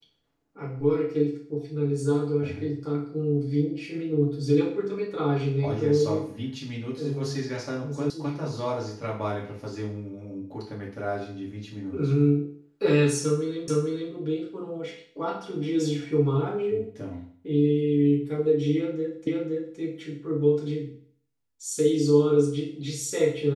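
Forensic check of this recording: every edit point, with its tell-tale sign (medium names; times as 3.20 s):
8.10 s: sound stops dead
13.68 s: repeat of the last 0.45 s
19.27 s: repeat of the last 0.52 s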